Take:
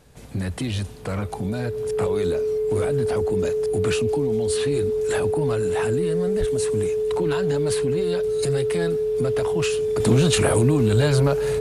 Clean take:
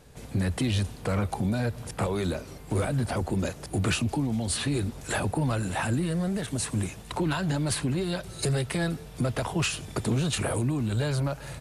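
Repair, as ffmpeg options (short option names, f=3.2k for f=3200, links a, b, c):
-filter_complex "[0:a]bandreject=f=430:w=30,asplit=3[a][b][c];[a]afade=t=out:st=6.39:d=0.02[d];[b]highpass=f=140:w=0.5412,highpass=f=140:w=1.3066,afade=t=in:st=6.39:d=0.02,afade=t=out:st=6.51:d=0.02[e];[c]afade=t=in:st=6.51:d=0.02[f];[d][e][f]amix=inputs=3:normalize=0,asetnsamples=n=441:p=0,asendcmd='10 volume volume -8dB',volume=0dB"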